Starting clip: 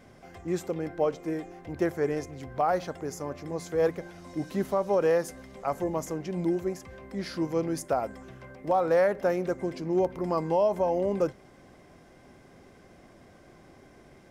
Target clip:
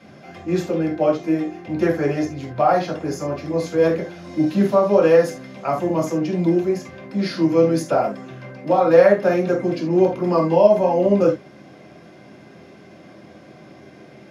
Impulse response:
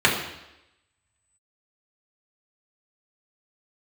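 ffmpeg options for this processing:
-filter_complex "[1:a]atrim=start_sample=2205,afade=t=out:st=0.18:d=0.01,atrim=end_sample=8379,asetrate=66150,aresample=44100[s0];[0:a][s0]afir=irnorm=-1:irlink=0,volume=0.473"

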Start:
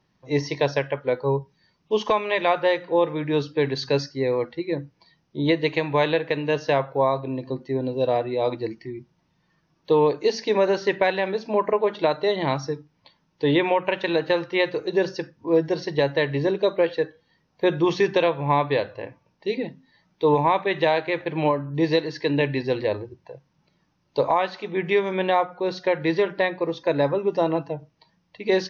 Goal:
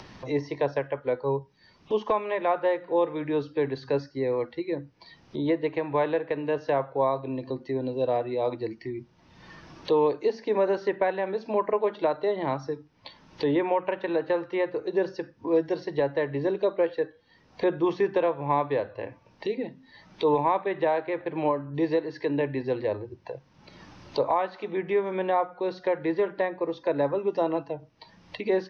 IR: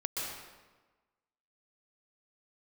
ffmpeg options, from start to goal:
-filter_complex "[0:a]acrossover=split=260|920|1700[s0][s1][s2][s3];[s3]acompressor=threshold=0.00631:ratio=6[s4];[s0][s1][s2][s4]amix=inputs=4:normalize=0,lowpass=5900,equalizer=f=160:w=3.3:g=-7.5,acompressor=mode=upward:threshold=0.0708:ratio=2.5,volume=0.668"

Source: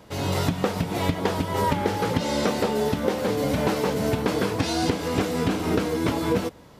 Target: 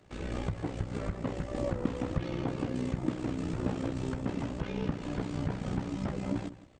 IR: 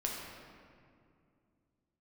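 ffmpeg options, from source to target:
-filter_complex "[0:a]asplit=2[s0][s1];[s1]adelay=163.3,volume=0.158,highshelf=f=4000:g=-3.67[s2];[s0][s2]amix=inputs=2:normalize=0,acrossover=split=160|2500[s3][s4][s5];[s5]alimiter=level_in=2.66:limit=0.0631:level=0:latency=1:release=224,volume=0.376[s6];[s3][s4][s6]amix=inputs=3:normalize=0,asetrate=26222,aresample=44100,atempo=1.68179,tremolo=f=62:d=0.71,volume=0.501"

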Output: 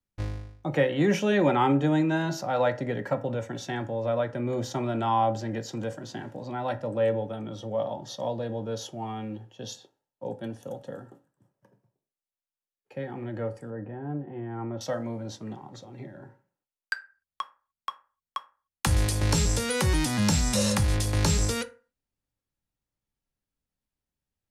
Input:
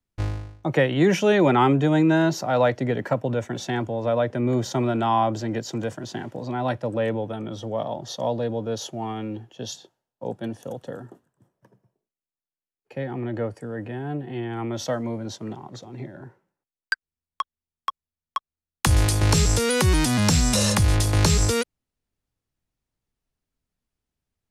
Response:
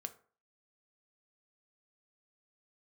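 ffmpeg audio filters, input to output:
-filter_complex "[0:a]asettb=1/sr,asplit=3[s0][s1][s2];[s0]atrim=end=13.704[s3];[s1]atrim=start=13.7:end=14.81,asetpts=PTS-STARTPTS,afade=t=in:d=0.004:c=qsin,afade=t=out:st=1.106:d=0.004:c=qsin,lowpass=1300[s4];[s2]atrim=start=14.806[s5];[s3][s4]acrossfade=d=0.004:c1=hsin:c2=qsin[s6];[s6][s5]acrossfade=d=0.004:c1=qsin:c2=hsin[s7];[1:a]atrim=start_sample=2205,asetrate=52920,aresample=44100[s8];[s7][s8]afir=irnorm=-1:irlink=0"

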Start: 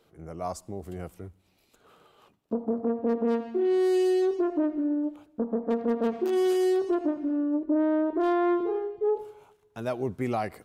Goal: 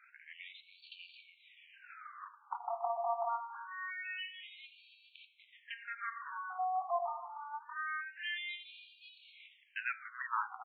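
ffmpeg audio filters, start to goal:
-filter_complex "[0:a]aeval=exprs='if(lt(val(0),0),0.708*val(0),val(0))':c=same,bandreject=f=101.9:t=h:w=4,bandreject=f=203.8:t=h:w=4,bandreject=f=305.7:t=h:w=4,bandreject=f=407.6:t=h:w=4,bandreject=f=509.5:t=h:w=4,bandreject=f=611.4:t=h:w=4,bandreject=f=713.3:t=h:w=4,bandreject=f=815.2:t=h:w=4,bandreject=f=917.1:t=h:w=4,bandreject=f=1019:t=h:w=4,bandreject=f=1120.9:t=h:w=4,bandreject=f=1222.8:t=h:w=4,bandreject=f=1324.7:t=h:w=4,bandreject=f=1426.6:t=h:w=4,bandreject=f=1528.5:t=h:w=4,bandreject=f=1630.4:t=h:w=4,bandreject=f=1732.3:t=h:w=4,bandreject=f=1834.2:t=h:w=4,bandreject=f=1936.1:t=h:w=4,bandreject=f=2038:t=h:w=4,bandreject=f=2139.9:t=h:w=4,bandreject=f=2241.8:t=h:w=4,bandreject=f=2343.7:t=h:w=4,bandreject=f=2445.6:t=h:w=4,bandreject=f=2547.5:t=h:w=4,bandreject=f=2649.4:t=h:w=4,bandreject=f=2751.3:t=h:w=4,bandreject=f=2853.2:t=h:w=4,bandreject=f=2955.1:t=h:w=4,bandreject=f=3057:t=h:w=4,bandreject=f=3158.9:t=h:w=4,bandreject=f=3260.8:t=h:w=4,bandreject=f=3362.7:t=h:w=4,bandreject=f=3464.6:t=h:w=4,bandreject=f=3566.5:t=h:w=4,bandreject=f=3668.4:t=h:w=4,bandreject=f=3770.3:t=h:w=4,bandreject=f=3872.2:t=h:w=4,acrossover=split=280|3000[s0][s1][s2];[s1]acompressor=threshold=0.00891:ratio=3[s3];[s0][s3][s2]amix=inputs=3:normalize=0,aecho=1:1:282:0.211,afftfilt=real='re*between(b*sr/1024,910*pow(3300/910,0.5+0.5*sin(2*PI*0.25*pts/sr))/1.41,910*pow(3300/910,0.5+0.5*sin(2*PI*0.25*pts/sr))*1.41)':imag='im*between(b*sr/1024,910*pow(3300/910,0.5+0.5*sin(2*PI*0.25*pts/sr))/1.41,910*pow(3300/910,0.5+0.5*sin(2*PI*0.25*pts/sr))*1.41)':win_size=1024:overlap=0.75,volume=5.62"

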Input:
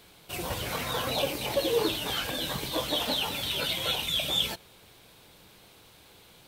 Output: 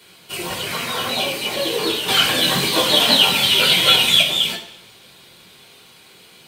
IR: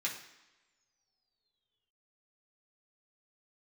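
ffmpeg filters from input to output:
-filter_complex "[0:a]asettb=1/sr,asplit=3[s0][s1][s2];[s0]atrim=end=2.084[s3];[s1]atrim=start=2.08:end=4.22,asetpts=PTS-STARTPTS,afade=t=in:d=0.004:c=qsin,afade=t=out:st=2.136:d=0.004:c=qsin,acontrast=71[s4];[s2]atrim=start=4.216[s5];[s3][s4]acrossfade=d=0.004:c1=hsin:c2=qsin[s6];[s6][s5]acrossfade=d=0.004:c1=qsin:c2=hsin[s7];[1:a]atrim=start_sample=2205,asetrate=52920,aresample=44100[s8];[s7][s8]afir=irnorm=-1:irlink=0,volume=2.37"

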